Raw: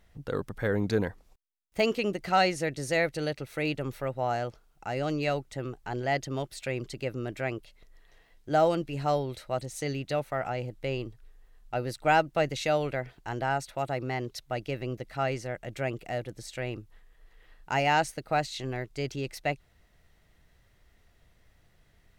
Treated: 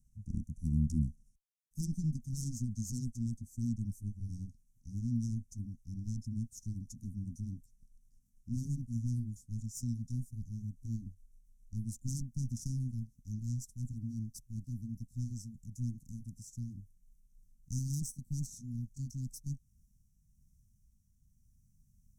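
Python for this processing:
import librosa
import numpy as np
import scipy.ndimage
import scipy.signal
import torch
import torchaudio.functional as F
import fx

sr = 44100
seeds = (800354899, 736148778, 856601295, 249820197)

y = fx.pitch_glide(x, sr, semitones=-5.5, runs='ending unshifted')
y = fx.cheby_harmonics(y, sr, harmonics=(8,), levels_db=(-16,), full_scale_db=-12.0)
y = scipy.signal.sosfilt(scipy.signal.cheby1(5, 1.0, [240.0, 5800.0], 'bandstop', fs=sr, output='sos'), y)
y = F.gain(torch.from_numpy(y), -1.5).numpy()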